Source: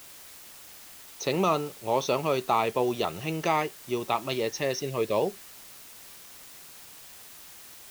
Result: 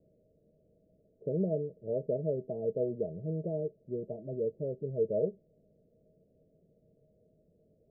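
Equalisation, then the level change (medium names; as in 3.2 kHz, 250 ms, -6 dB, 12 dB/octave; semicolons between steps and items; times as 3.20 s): rippled Chebyshev low-pass 650 Hz, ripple 9 dB; 0.0 dB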